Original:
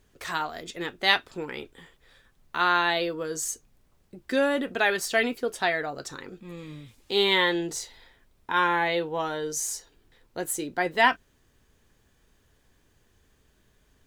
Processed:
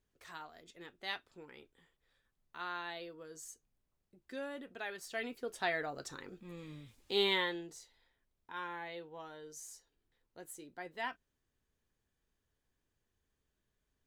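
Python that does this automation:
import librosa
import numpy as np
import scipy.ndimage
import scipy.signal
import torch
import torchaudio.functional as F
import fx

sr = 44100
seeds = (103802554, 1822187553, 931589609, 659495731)

y = fx.gain(x, sr, db=fx.line((4.96, -19.0), (5.76, -8.0), (7.26, -8.0), (7.78, -19.5)))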